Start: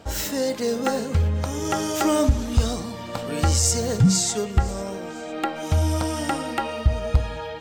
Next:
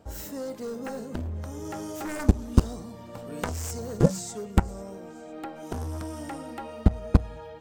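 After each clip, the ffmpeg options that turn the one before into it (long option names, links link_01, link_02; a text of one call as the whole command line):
ffmpeg -i in.wav -af "equalizer=frequency=3200:width=0.45:gain=-9.5,aeval=exprs='0.422*(cos(1*acos(clip(val(0)/0.422,-1,1)))-cos(1*PI/2))+0.211*(cos(3*acos(clip(val(0)/0.422,-1,1)))-cos(3*PI/2))+0.0168*(cos(5*acos(clip(val(0)/0.422,-1,1)))-cos(5*PI/2))':channel_layout=same,volume=3dB" out.wav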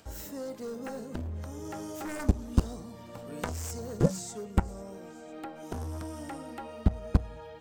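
ffmpeg -i in.wav -filter_complex "[0:a]acrossover=split=830|1400[link_01][link_02][link_03];[link_03]acompressor=mode=upward:threshold=-50dB:ratio=2.5[link_04];[link_01][link_02][link_04]amix=inputs=3:normalize=0,asoftclip=type=tanh:threshold=-3.5dB,volume=-3.5dB" out.wav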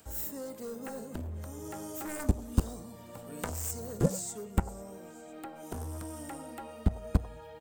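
ffmpeg -i in.wav -filter_complex "[0:a]acrossover=split=470|980[link_01][link_02][link_03];[link_02]aecho=1:1:91:0.473[link_04];[link_03]aexciter=amount=2.2:drive=7:freq=7500[link_05];[link_01][link_04][link_05]amix=inputs=3:normalize=0,volume=-2.5dB" out.wav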